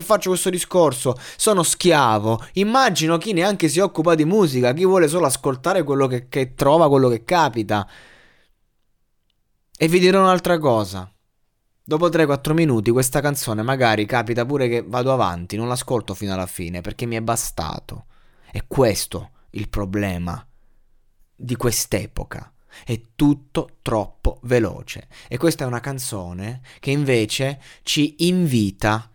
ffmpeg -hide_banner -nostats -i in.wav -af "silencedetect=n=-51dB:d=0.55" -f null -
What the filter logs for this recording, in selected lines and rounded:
silence_start: 8.51
silence_end: 9.30 | silence_duration: 0.79
silence_start: 11.15
silence_end: 11.85 | silence_duration: 0.70